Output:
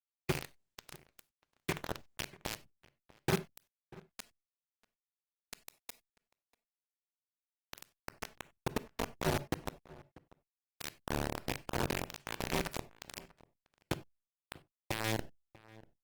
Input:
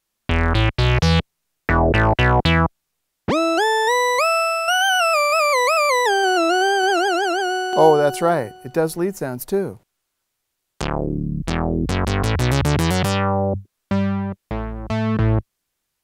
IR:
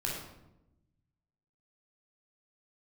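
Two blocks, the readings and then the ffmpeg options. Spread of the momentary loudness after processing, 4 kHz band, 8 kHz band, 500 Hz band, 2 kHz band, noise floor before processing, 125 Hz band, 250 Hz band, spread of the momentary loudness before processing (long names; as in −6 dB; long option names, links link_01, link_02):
20 LU, −20.5 dB, −17.0 dB, −24.0 dB, −23.5 dB, −77 dBFS, −23.5 dB, −21.0 dB, 9 LU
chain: -filter_complex "[0:a]highshelf=frequency=3800:gain=-9,acompressor=threshold=-24dB:ratio=5,asplit=3[link_01][link_02][link_03];[link_01]bandpass=frequency=270:width_type=q:width=8,volume=0dB[link_04];[link_02]bandpass=frequency=2290:width_type=q:width=8,volume=-6dB[link_05];[link_03]bandpass=frequency=3010:width_type=q:width=8,volume=-9dB[link_06];[link_04][link_05][link_06]amix=inputs=3:normalize=0,aeval=exprs='val(0)*sin(2*PI*110*n/s)':channel_layout=same,acrusher=bits=5:mix=0:aa=0.000001,asplit=2[link_07][link_08];[link_08]adelay=641.4,volume=-21dB,highshelf=frequency=4000:gain=-14.4[link_09];[link_07][link_09]amix=inputs=2:normalize=0,asplit=2[link_10][link_11];[1:a]atrim=start_sample=2205,atrim=end_sample=4410[link_12];[link_11][link_12]afir=irnorm=-1:irlink=0,volume=-15.5dB[link_13];[link_10][link_13]amix=inputs=2:normalize=0,volume=6.5dB" -ar 48000 -c:a libopus -b:a 16k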